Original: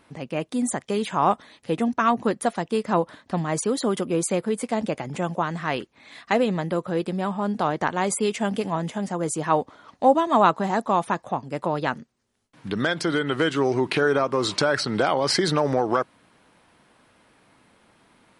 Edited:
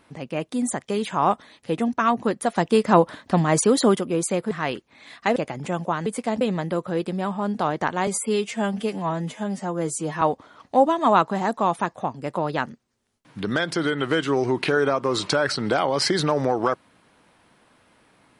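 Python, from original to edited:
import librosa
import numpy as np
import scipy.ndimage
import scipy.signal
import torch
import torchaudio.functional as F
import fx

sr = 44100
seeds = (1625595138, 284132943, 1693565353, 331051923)

y = fx.edit(x, sr, fx.clip_gain(start_s=2.56, length_s=1.39, db=6.0),
    fx.swap(start_s=4.51, length_s=0.35, other_s=5.56, other_length_s=0.85),
    fx.stretch_span(start_s=8.07, length_s=1.43, factor=1.5), tone=tone)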